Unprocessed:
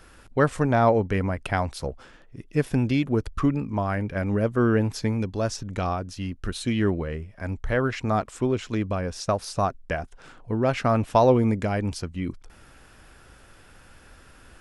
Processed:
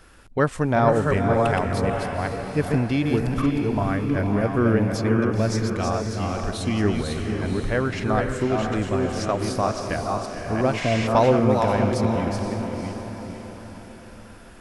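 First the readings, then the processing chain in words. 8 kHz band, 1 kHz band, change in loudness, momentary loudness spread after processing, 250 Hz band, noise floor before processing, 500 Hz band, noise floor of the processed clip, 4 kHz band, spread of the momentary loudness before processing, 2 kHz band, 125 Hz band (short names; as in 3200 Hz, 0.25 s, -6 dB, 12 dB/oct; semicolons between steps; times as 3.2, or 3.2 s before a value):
+3.0 dB, +2.5 dB, +2.5 dB, 10 LU, +3.0 dB, -52 dBFS, +3.0 dB, -43 dBFS, +3.5 dB, 11 LU, +3.0 dB, +2.5 dB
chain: reverse delay 0.38 s, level -4 dB; diffused feedback echo 0.515 s, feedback 49%, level -5.5 dB; spectral repair 10.83–11.05, 720–9200 Hz before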